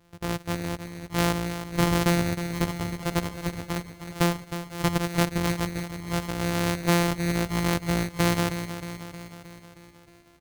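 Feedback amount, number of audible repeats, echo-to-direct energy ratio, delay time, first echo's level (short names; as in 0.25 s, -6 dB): 60%, 6, -8.5 dB, 0.313 s, -10.5 dB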